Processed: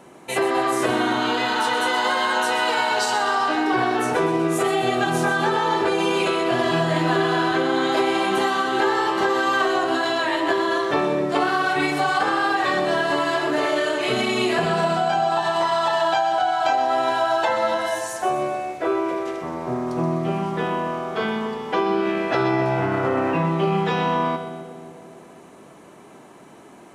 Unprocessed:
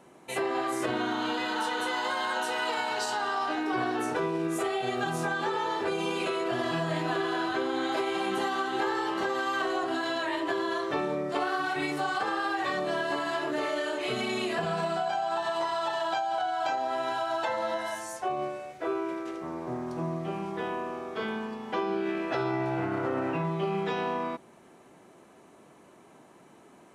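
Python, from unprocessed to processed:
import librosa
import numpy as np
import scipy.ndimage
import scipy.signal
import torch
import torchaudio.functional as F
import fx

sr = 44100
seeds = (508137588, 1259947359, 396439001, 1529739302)

y = fx.echo_split(x, sr, split_hz=740.0, low_ms=275, high_ms=126, feedback_pct=52, wet_db=-10)
y = F.gain(torch.from_numpy(y), 8.5).numpy()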